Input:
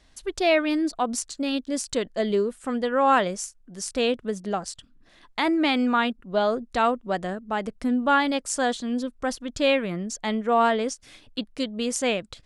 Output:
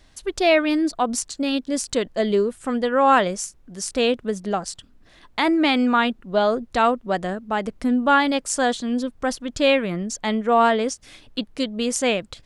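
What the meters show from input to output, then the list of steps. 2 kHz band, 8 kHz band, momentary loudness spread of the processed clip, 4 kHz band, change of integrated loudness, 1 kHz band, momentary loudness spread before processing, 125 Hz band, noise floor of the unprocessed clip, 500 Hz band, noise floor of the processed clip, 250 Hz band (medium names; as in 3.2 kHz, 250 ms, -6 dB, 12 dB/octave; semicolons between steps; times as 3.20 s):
+3.5 dB, +3.5 dB, 10 LU, +3.5 dB, +3.5 dB, +3.5 dB, 10 LU, +3.5 dB, -58 dBFS, +3.5 dB, -53 dBFS, +3.5 dB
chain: added noise brown -62 dBFS; trim +3.5 dB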